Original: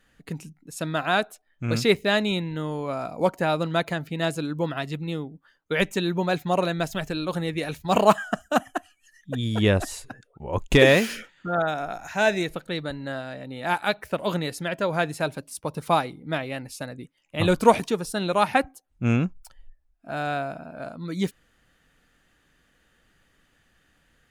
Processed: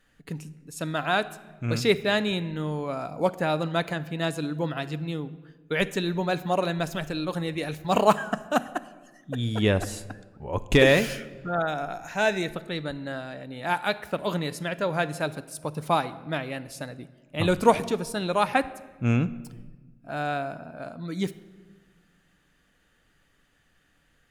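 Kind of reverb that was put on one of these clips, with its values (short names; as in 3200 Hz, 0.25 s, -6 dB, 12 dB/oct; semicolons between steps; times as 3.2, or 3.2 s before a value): shoebox room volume 1100 m³, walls mixed, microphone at 0.34 m; gain -2 dB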